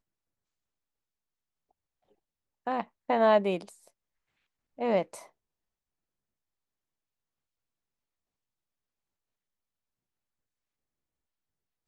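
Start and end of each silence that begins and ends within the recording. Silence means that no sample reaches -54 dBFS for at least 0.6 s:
3.88–4.78 s

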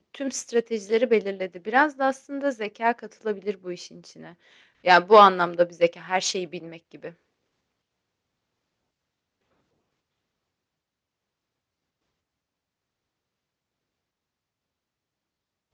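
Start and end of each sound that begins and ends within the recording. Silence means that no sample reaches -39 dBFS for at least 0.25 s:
4.85–7.11 s

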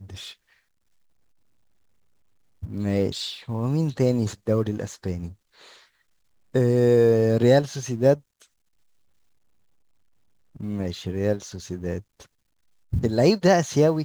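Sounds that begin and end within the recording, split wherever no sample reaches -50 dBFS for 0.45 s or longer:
2.62–5.86 s
6.54–8.46 s
10.55–12.26 s

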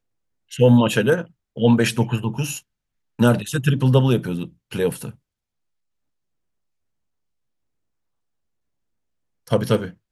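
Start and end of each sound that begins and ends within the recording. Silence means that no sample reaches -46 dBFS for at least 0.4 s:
0.51–2.61 s
3.19–5.15 s

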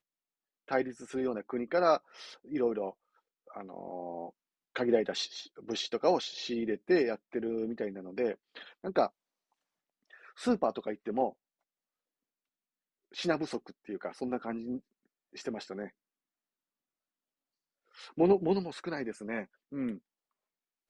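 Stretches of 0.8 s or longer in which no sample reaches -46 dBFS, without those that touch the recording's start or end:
9.08–10.14 s
11.30–13.14 s
15.88–17.97 s

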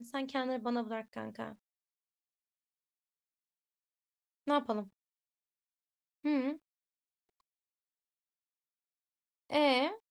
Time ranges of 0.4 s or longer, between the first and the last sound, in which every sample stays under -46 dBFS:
1.53–4.47 s
4.84–6.24 s
6.56–9.50 s

